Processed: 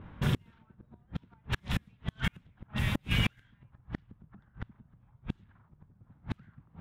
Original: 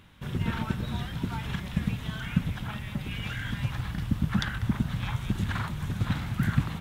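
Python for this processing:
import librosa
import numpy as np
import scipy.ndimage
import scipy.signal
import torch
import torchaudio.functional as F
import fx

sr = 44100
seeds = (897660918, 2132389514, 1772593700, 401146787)

y = fx.gate_flip(x, sr, shuts_db=-24.0, range_db=-38)
y = fx.env_lowpass(y, sr, base_hz=760.0, full_db=-37.5)
y = y * librosa.db_to_amplitude(8.0)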